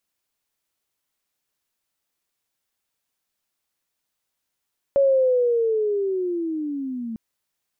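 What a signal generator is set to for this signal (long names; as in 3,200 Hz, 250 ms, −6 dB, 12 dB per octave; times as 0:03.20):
glide linear 560 Hz → 220 Hz −13.5 dBFS → −27.5 dBFS 2.20 s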